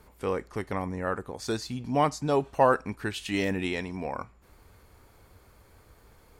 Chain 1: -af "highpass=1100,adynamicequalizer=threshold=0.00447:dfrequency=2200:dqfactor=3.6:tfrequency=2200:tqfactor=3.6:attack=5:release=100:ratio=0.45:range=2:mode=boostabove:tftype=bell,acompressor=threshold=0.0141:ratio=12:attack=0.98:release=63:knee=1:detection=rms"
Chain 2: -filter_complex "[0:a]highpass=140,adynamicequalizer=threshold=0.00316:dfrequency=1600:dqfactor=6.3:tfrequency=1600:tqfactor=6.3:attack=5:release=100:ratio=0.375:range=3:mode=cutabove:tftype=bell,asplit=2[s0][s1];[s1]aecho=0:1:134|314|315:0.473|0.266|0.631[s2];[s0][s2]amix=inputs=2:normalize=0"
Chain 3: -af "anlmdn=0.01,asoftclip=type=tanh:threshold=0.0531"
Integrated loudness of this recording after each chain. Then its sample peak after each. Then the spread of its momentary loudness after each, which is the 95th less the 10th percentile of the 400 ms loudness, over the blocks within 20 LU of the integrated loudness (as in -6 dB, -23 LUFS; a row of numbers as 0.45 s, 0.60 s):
-45.0 LUFS, -27.5 LUFS, -34.0 LUFS; -29.0 dBFS, -7.0 dBFS, -25.5 dBFS; 20 LU, 12 LU, 5 LU